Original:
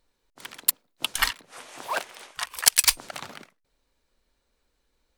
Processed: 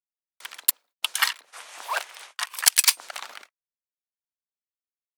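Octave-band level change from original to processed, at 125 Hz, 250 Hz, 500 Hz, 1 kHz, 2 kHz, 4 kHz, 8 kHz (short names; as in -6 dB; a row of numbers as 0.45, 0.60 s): under -15 dB, under -10 dB, -4.0 dB, +0.5 dB, +1.5 dB, +1.0 dB, +0.5 dB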